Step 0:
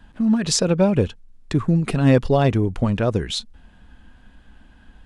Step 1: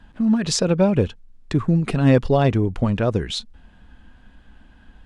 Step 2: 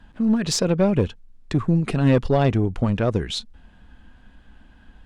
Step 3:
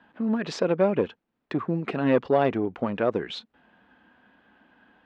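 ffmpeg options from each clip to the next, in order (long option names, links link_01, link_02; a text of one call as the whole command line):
ffmpeg -i in.wav -af "highshelf=frequency=9200:gain=-8.5" out.wav
ffmpeg -i in.wav -af "aeval=exprs='(tanh(2.82*val(0)+0.3)-tanh(0.3))/2.82':channel_layout=same" out.wav
ffmpeg -i in.wav -af "highpass=300,lowpass=2500" out.wav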